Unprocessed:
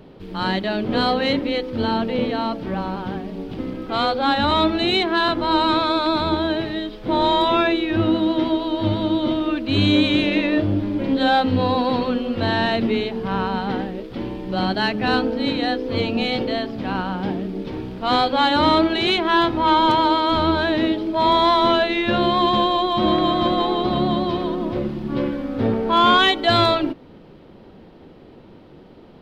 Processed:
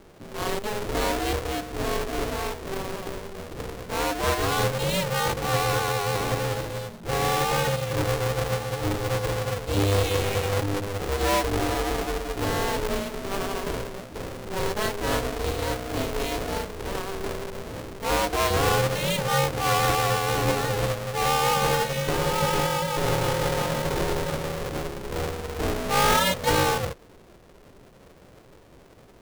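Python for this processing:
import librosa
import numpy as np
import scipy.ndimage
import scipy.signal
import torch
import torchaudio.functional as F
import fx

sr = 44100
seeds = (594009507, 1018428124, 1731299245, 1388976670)

y = fx.halfwave_hold(x, sr)
y = y * np.sin(2.0 * np.pi * 200.0 * np.arange(len(y)) / sr)
y = y * librosa.db_to_amplitude(-7.5)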